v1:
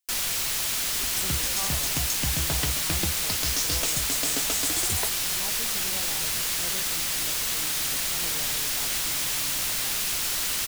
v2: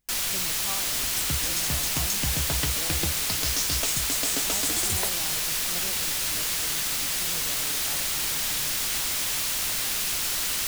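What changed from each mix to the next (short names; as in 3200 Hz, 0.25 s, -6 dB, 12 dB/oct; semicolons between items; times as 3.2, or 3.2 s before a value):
speech: entry -0.90 s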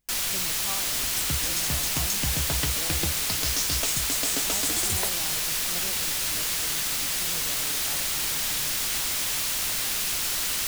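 none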